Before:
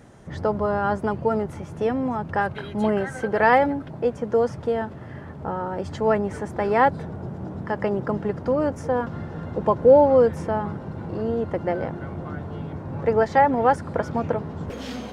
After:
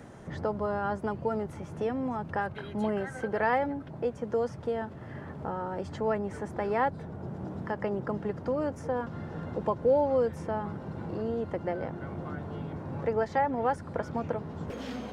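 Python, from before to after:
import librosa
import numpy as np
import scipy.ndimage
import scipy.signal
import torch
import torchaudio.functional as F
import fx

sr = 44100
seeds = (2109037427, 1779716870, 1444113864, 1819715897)

y = fx.band_squash(x, sr, depth_pct=40)
y = F.gain(torch.from_numpy(y), -8.0).numpy()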